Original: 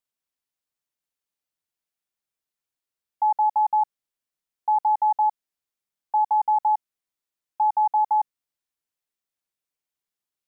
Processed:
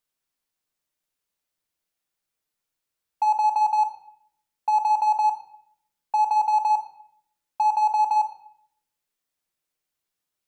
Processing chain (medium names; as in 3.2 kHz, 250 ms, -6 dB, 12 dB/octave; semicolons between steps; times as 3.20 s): in parallel at -5 dB: hard clipper -31 dBFS, distortion -8 dB; on the sum: simulated room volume 140 m³, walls mixed, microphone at 0.5 m